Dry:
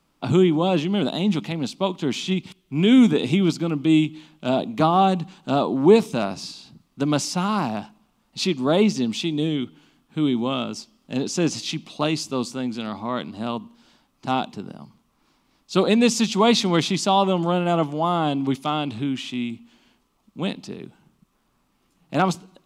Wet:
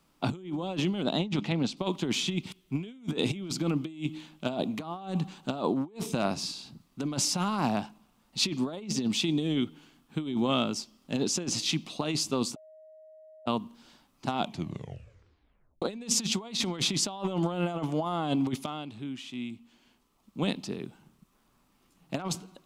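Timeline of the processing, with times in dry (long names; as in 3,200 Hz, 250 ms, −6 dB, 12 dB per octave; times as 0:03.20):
0:01.03–0:01.77: high-frequency loss of the air 75 metres
0:12.56–0:13.46: beep over 628 Hz −7 dBFS
0:14.38: tape stop 1.44 s
0:18.66–0:20.42: fade in quadratic, from −12.5 dB
whole clip: compressor whose output falls as the input rises −24 dBFS, ratio −0.5; high-shelf EQ 7,700 Hz +4 dB; level −6.5 dB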